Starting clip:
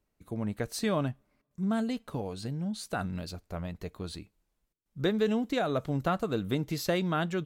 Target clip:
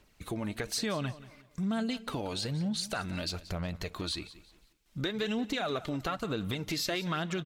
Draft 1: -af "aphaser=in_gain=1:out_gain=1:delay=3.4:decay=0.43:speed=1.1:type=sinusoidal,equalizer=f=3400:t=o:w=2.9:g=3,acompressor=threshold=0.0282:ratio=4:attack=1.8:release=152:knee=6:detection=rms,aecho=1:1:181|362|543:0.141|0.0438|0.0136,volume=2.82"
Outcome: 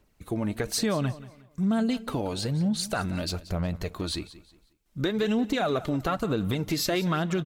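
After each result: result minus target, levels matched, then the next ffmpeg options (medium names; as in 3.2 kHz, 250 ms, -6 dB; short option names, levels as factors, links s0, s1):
compression: peak gain reduction -7.5 dB; 4 kHz band -4.0 dB
-af "aphaser=in_gain=1:out_gain=1:delay=3.4:decay=0.43:speed=1.1:type=sinusoidal,equalizer=f=3400:t=o:w=2.9:g=3,acompressor=threshold=0.01:ratio=4:attack=1.8:release=152:knee=6:detection=rms,aecho=1:1:181|362|543:0.141|0.0438|0.0136,volume=2.82"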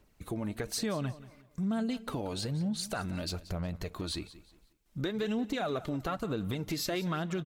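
4 kHz band -3.5 dB
-af "aphaser=in_gain=1:out_gain=1:delay=3.4:decay=0.43:speed=1.1:type=sinusoidal,equalizer=f=3400:t=o:w=2.9:g=10.5,acompressor=threshold=0.01:ratio=4:attack=1.8:release=152:knee=6:detection=rms,aecho=1:1:181|362|543:0.141|0.0438|0.0136,volume=2.82"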